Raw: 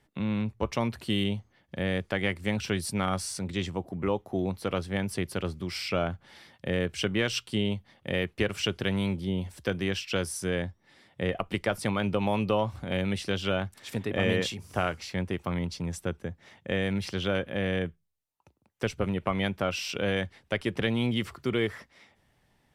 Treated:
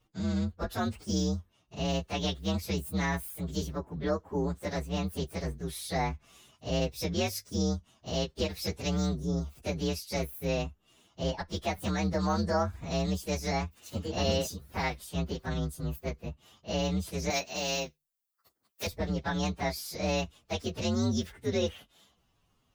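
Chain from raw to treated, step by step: inharmonic rescaling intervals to 124%; 17.3–18.87 RIAA curve recording

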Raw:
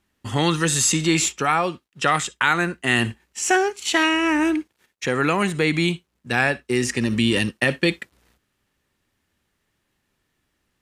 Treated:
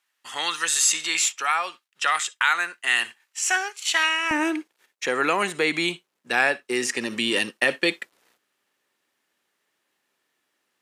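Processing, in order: HPF 1100 Hz 12 dB/oct, from 4.31 s 400 Hz

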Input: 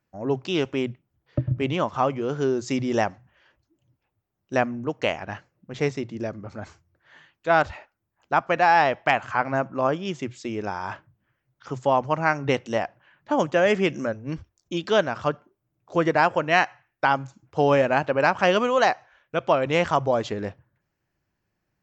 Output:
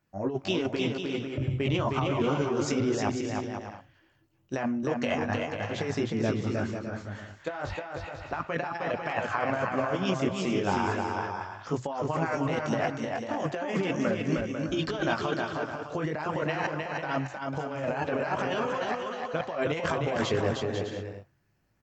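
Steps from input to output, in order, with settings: chorus voices 2, 0.34 Hz, delay 20 ms, depth 2.1 ms; negative-ratio compressor -30 dBFS, ratio -1; bouncing-ball echo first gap 0.31 s, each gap 0.6×, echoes 5

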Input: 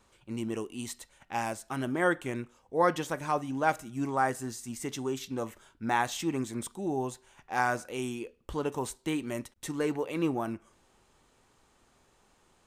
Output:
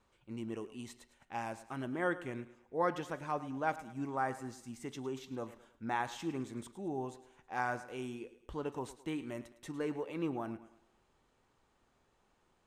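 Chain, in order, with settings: high shelf 5700 Hz -11 dB; on a send: thinning echo 0.107 s, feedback 43%, high-pass 180 Hz, level -15 dB; on the sum: gain -7 dB

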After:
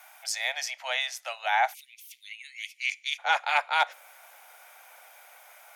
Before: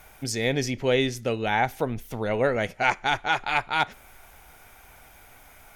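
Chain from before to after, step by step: steep high-pass 640 Hz 72 dB/oct, from 1.73 s 2200 Hz, from 3.18 s 510 Hz

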